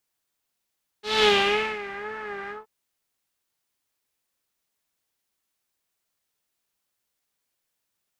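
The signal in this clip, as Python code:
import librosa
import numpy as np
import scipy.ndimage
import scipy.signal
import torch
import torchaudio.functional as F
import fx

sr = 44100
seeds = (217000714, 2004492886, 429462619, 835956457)

y = fx.sub_patch_vibrato(sr, seeds[0], note=68, wave='saw', wave2='saw', interval_st=0, detune_cents=16, level2_db=-9.0, sub_db=-19, noise_db=-2.5, kind='lowpass', cutoff_hz=1000.0, q=2.9, env_oct=2.0, env_decay_s=1.03, env_sustain_pct=40, attack_ms=205.0, decay_s=0.55, sustain_db=-17.0, release_s=0.16, note_s=1.47, lfo_hz=2.0, vibrato_cents=83)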